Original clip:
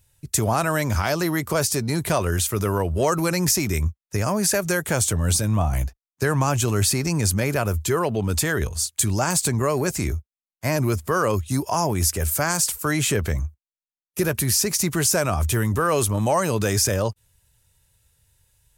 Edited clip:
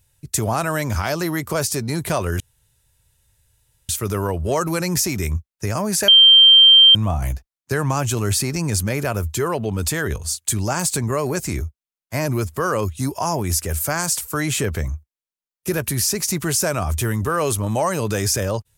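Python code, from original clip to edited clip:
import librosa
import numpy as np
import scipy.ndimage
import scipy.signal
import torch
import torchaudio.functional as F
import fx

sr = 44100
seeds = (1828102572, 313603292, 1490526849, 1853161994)

y = fx.edit(x, sr, fx.insert_room_tone(at_s=2.4, length_s=1.49),
    fx.bleep(start_s=4.59, length_s=0.87, hz=3150.0, db=-6.0), tone=tone)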